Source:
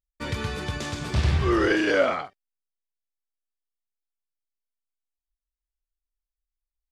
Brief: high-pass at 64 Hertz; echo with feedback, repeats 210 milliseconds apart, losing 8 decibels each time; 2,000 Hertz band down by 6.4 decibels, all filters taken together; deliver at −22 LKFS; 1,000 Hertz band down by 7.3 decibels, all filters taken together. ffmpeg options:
ffmpeg -i in.wav -af "highpass=64,equalizer=frequency=1000:width_type=o:gain=-8.5,equalizer=frequency=2000:width_type=o:gain=-5,aecho=1:1:210|420|630|840|1050:0.398|0.159|0.0637|0.0255|0.0102,volume=4.5dB" out.wav

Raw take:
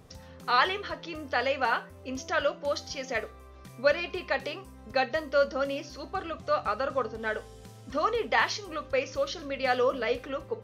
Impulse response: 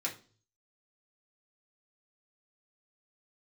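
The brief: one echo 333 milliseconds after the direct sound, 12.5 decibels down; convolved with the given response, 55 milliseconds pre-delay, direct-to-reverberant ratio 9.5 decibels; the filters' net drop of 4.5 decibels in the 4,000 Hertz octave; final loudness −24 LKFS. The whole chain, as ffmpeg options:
-filter_complex "[0:a]equalizer=frequency=4000:width_type=o:gain=-6,aecho=1:1:333:0.237,asplit=2[link_01][link_02];[1:a]atrim=start_sample=2205,adelay=55[link_03];[link_02][link_03]afir=irnorm=-1:irlink=0,volume=-12.5dB[link_04];[link_01][link_04]amix=inputs=2:normalize=0,volume=5.5dB"

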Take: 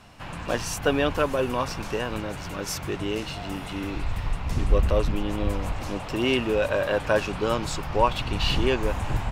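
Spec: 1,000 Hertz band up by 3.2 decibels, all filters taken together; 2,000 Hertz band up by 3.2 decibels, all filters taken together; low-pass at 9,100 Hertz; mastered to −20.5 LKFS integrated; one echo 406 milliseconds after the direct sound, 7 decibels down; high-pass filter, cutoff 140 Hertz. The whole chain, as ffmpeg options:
ffmpeg -i in.wav -af "highpass=140,lowpass=9100,equalizer=frequency=1000:width_type=o:gain=3,equalizer=frequency=2000:width_type=o:gain=3.5,aecho=1:1:406:0.447,volume=4.5dB" out.wav

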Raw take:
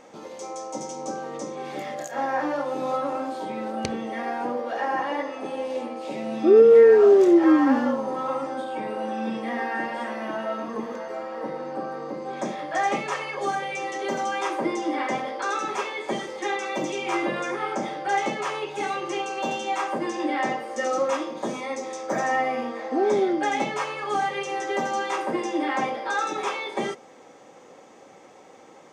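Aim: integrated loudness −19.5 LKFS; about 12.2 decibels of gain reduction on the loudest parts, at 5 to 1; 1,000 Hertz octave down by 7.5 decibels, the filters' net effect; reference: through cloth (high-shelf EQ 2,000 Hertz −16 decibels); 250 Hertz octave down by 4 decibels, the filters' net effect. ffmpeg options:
ffmpeg -i in.wav -af "equalizer=frequency=250:width_type=o:gain=-4.5,equalizer=frequency=1000:width_type=o:gain=-6.5,acompressor=threshold=-27dB:ratio=5,highshelf=frequency=2000:gain=-16,volume=15dB" out.wav

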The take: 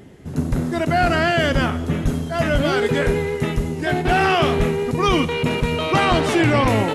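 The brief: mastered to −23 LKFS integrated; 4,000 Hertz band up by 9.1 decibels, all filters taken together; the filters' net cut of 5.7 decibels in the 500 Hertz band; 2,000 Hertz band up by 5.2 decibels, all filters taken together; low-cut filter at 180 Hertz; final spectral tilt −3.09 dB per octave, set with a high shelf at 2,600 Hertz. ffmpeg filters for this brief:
ffmpeg -i in.wav -af "highpass=180,equalizer=frequency=500:width_type=o:gain=-8.5,equalizer=frequency=2000:width_type=o:gain=3,highshelf=frequency=2600:gain=6,equalizer=frequency=4000:width_type=o:gain=6.5,volume=-5dB" out.wav

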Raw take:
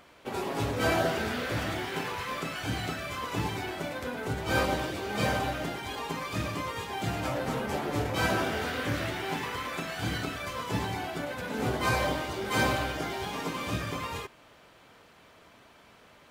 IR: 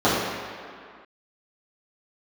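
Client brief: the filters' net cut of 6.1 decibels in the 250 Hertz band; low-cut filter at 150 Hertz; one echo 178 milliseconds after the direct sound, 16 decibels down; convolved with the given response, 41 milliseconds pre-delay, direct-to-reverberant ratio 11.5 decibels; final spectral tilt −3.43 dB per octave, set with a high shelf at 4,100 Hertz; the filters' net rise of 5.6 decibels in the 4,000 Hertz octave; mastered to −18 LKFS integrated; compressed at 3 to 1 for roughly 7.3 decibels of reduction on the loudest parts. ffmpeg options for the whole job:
-filter_complex "[0:a]highpass=150,equalizer=frequency=250:width_type=o:gain=-7.5,equalizer=frequency=4000:width_type=o:gain=4,highshelf=frequency=4100:gain=6,acompressor=threshold=-32dB:ratio=3,aecho=1:1:178:0.158,asplit=2[link_01][link_02];[1:a]atrim=start_sample=2205,adelay=41[link_03];[link_02][link_03]afir=irnorm=-1:irlink=0,volume=-34dB[link_04];[link_01][link_04]amix=inputs=2:normalize=0,volume=16dB"

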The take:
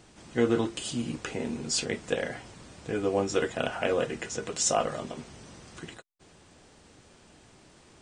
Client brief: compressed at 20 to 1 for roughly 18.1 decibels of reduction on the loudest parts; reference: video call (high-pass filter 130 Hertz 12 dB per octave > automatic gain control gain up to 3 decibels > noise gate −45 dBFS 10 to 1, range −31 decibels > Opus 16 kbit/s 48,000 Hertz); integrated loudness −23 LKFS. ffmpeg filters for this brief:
ffmpeg -i in.wav -af "acompressor=threshold=-38dB:ratio=20,highpass=130,dynaudnorm=maxgain=3dB,agate=range=-31dB:threshold=-45dB:ratio=10,volume=21.5dB" -ar 48000 -c:a libopus -b:a 16k out.opus

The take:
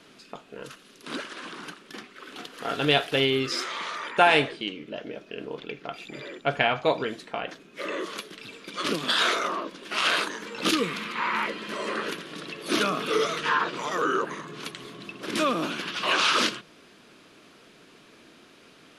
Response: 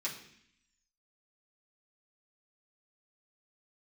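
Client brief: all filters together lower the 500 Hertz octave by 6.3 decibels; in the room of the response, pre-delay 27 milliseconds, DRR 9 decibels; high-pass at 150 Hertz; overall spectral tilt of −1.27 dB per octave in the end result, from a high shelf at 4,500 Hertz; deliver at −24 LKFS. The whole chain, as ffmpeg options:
-filter_complex "[0:a]highpass=150,equalizer=frequency=500:width_type=o:gain=-8.5,highshelf=frequency=4500:gain=8.5,asplit=2[link_01][link_02];[1:a]atrim=start_sample=2205,adelay=27[link_03];[link_02][link_03]afir=irnorm=-1:irlink=0,volume=-11.5dB[link_04];[link_01][link_04]amix=inputs=2:normalize=0,volume=1.5dB"

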